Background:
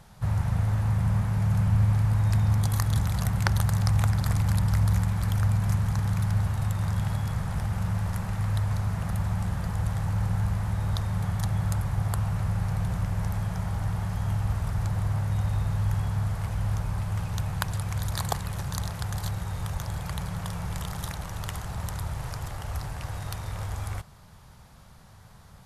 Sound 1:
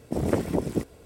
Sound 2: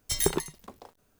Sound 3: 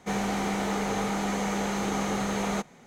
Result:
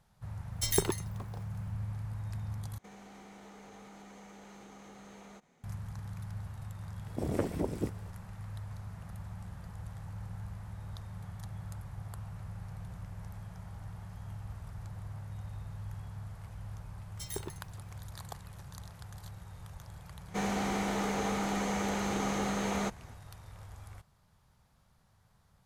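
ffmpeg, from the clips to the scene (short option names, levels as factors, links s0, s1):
-filter_complex "[2:a]asplit=2[s0][s1];[3:a]asplit=2[s2][s3];[0:a]volume=0.158[s4];[s2]acompressor=threshold=0.02:ratio=6:attack=3.2:release=140:knee=1:detection=peak[s5];[s4]asplit=2[s6][s7];[s6]atrim=end=2.784[s8];[s5]atrim=end=2.86,asetpts=PTS-STARTPTS,volume=0.188[s9];[s7]atrim=start=5.636[s10];[s0]atrim=end=1.19,asetpts=PTS-STARTPTS,volume=0.708,afade=t=in:d=0.004:c=hsin,afade=t=out:st=1.186:d=0.004:c=hsin,adelay=520[s11];[1:a]atrim=end=1.05,asetpts=PTS-STARTPTS,volume=0.422,afade=t=in:d=0.004:c=hsin,afade=t=out:st=1.046:d=0.004:c=hsin,adelay=311346S[s12];[s1]atrim=end=1.19,asetpts=PTS-STARTPTS,volume=0.188,afade=t=in:d=0.004:c=hsin,afade=t=out:st=1.186:d=0.004:c=hsin,adelay=17100[s13];[s3]atrim=end=2.86,asetpts=PTS-STARTPTS,volume=0.631,afade=t=in:d=0.004:c=hsin,afade=t=out:st=2.856:d=0.004:c=hsin,adelay=20280[s14];[s8][s9]acrossfade=d=0.004:c1=hsin:c2=hsin[s15];[s15][s10]acrossfade=d=0.004:c1=hsin:c2=hsin[s16];[s16][s11][s12][s13][s14]amix=inputs=5:normalize=0"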